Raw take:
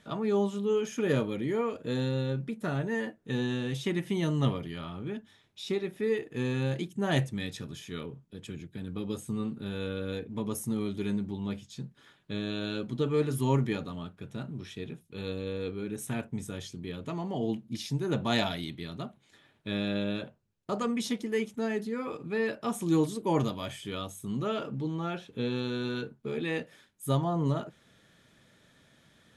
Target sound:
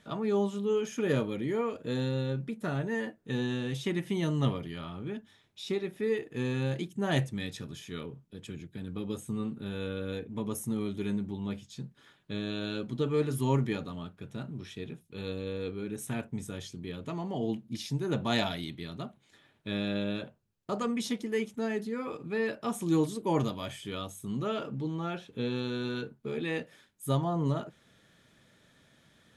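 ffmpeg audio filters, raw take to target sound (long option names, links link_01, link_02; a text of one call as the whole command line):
ffmpeg -i in.wav -filter_complex "[0:a]asettb=1/sr,asplit=3[link_01][link_02][link_03];[link_01]atrim=end=8.974[link_04];[link_02]atrim=start=8.97:end=11.54,asetpts=PTS-STARTPTS,afade=type=in:duration=0.004:curve=qsin,afade=type=out:start_time=2.566:duration=0.004:curve=qsin,equalizer=frequency=4700:width_type=o:width=0.31:gain=-5.5[link_05];[link_03]atrim=start=11.536[link_06];[link_04][link_05]acrossfade=duration=0.004:curve1=hsin:curve2=qsin[link_07];[link_07][link_06]acrossfade=duration=0.004:curve1=qsin:curve2=hsin,volume=-1dB" out.wav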